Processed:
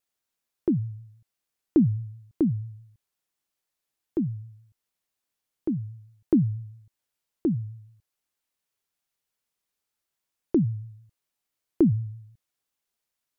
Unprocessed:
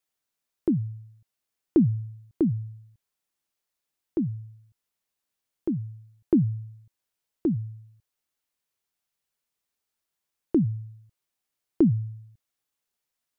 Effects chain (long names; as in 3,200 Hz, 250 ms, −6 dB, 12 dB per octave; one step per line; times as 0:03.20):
pitch vibrato 6.1 Hz 58 cents